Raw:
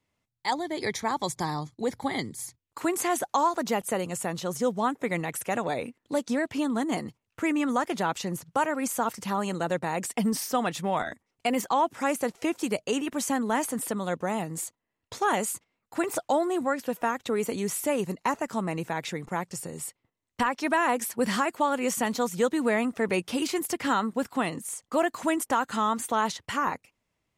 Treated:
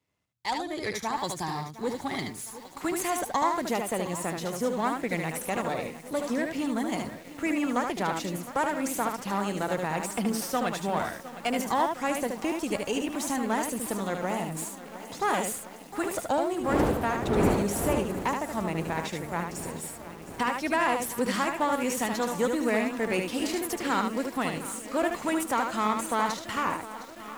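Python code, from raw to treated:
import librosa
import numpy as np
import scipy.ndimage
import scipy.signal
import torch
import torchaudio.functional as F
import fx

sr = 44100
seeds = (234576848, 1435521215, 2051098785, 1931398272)

p1 = np.where(x < 0.0, 10.0 ** (-7.0 / 20.0) * x, x)
p2 = fx.dmg_wind(p1, sr, seeds[0], corner_hz=510.0, level_db=-25.0, at=(16.51, 17.98), fade=0.02)
p3 = scipy.signal.sosfilt(scipy.signal.butter(2, 42.0, 'highpass', fs=sr, output='sos'), p2)
p4 = p3 + fx.echo_single(p3, sr, ms=75, db=-5.0, dry=0)
y = fx.echo_crushed(p4, sr, ms=710, feedback_pct=80, bits=7, wet_db=-14.5)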